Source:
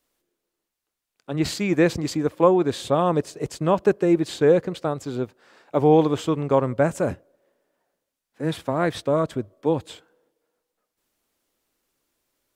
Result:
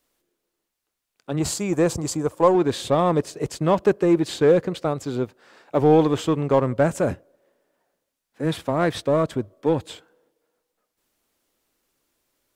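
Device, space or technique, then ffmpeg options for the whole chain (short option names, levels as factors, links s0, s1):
parallel distortion: -filter_complex "[0:a]asettb=1/sr,asplit=3[s0][s1][s2];[s0]atrim=end=1.394[s3];[s1]atrim=start=1.39:end=2.55,asetpts=PTS-STARTPTS,afade=t=in:d=0.004:c=qsin,afade=t=out:st=1.156:d=0.004:c=qsin,equalizer=f=250:t=o:w=1:g=-6,equalizer=f=1000:t=o:w=1:g=4,equalizer=f=2000:t=o:w=1:g=-9,equalizer=f=4000:t=o:w=1:g=-6,equalizer=f=8000:t=o:w=1:g=8[s4];[s2]atrim=start=2.546[s5];[s3][s4]acrossfade=d=0.004:c1=hsin:c2=qsin[s6];[s6][s5]acrossfade=d=0.004:c1=qsin:c2=hsin,asplit=2[s7][s8];[s8]asoftclip=type=hard:threshold=0.0891,volume=0.447[s9];[s7][s9]amix=inputs=2:normalize=0,volume=0.891"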